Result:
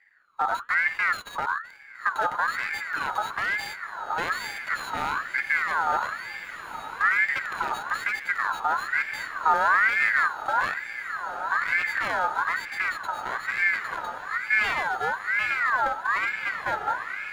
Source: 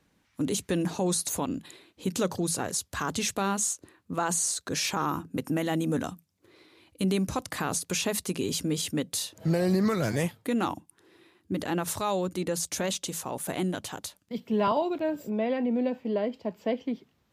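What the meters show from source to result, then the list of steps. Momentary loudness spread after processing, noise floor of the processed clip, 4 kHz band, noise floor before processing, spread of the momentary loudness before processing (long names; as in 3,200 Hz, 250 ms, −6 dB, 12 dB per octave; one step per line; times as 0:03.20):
10 LU, −42 dBFS, −3.5 dB, −70 dBFS, 8 LU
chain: samples sorted by size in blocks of 16 samples
spectral tilt −4 dB per octave
hum removal 240 Hz, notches 9
asymmetric clip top −20 dBFS
on a send: feedback delay with all-pass diffusion 1,905 ms, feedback 58%, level −8.5 dB
on the sum: ring modulator whose carrier an LFO sweeps 1,500 Hz, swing 30%, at 1.1 Hz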